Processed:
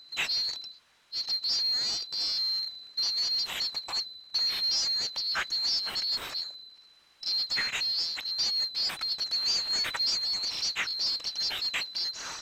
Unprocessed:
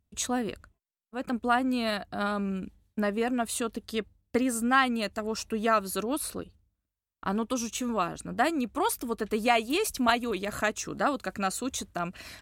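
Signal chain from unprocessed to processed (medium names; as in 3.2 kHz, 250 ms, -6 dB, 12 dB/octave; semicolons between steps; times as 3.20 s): split-band scrambler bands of 4 kHz; high-pass 1.1 kHz 12 dB/octave; power-law waveshaper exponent 0.5; tape spacing loss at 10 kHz 22 dB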